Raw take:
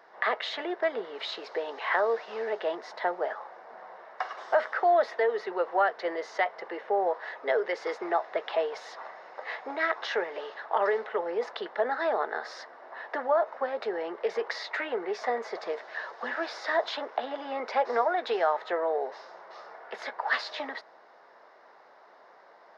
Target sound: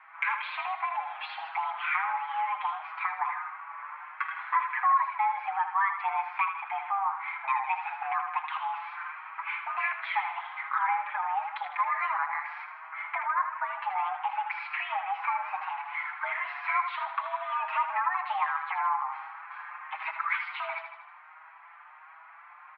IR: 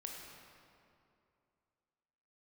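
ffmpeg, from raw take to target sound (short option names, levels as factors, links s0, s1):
-filter_complex "[0:a]highpass=f=210:t=q:w=0.5412,highpass=f=210:t=q:w=1.307,lowpass=f=2600:t=q:w=0.5176,lowpass=f=2600:t=q:w=0.7071,lowpass=f=2600:t=q:w=1.932,afreqshift=390,acompressor=threshold=0.02:ratio=2,asplit=2[s0][s1];[s1]aecho=0:1:79|158|237|316|395|474|553:0.376|0.21|0.118|0.066|0.037|0.0207|0.0116[s2];[s0][s2]amix=inputs=2:normalize=0,asplit=2[s3][s4];[s4]adelay=5.8,afreqshift=1.4[s5];[s3][s5]amix=inputs=2:normalize=1,volume=2.11"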